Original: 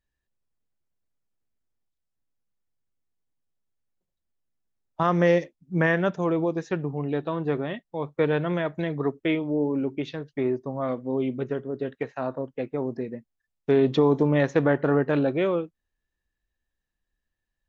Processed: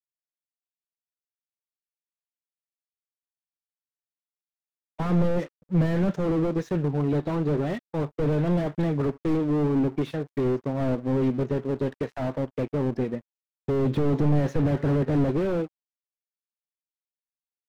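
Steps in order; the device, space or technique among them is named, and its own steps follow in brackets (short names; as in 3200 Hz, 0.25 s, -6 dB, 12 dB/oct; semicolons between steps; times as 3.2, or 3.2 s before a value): early transistor amplifier (crossover distortion -52.5 dBFS; slew limiter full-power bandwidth 14 Hz); gain +6 dB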